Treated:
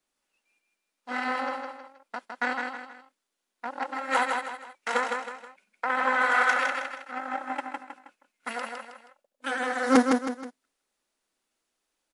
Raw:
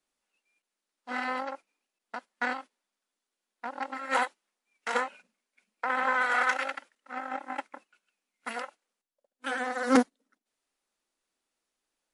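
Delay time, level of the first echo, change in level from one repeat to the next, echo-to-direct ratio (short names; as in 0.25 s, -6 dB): 0.159 s, -4.5 dB, -8.0 dB, -4.0 dB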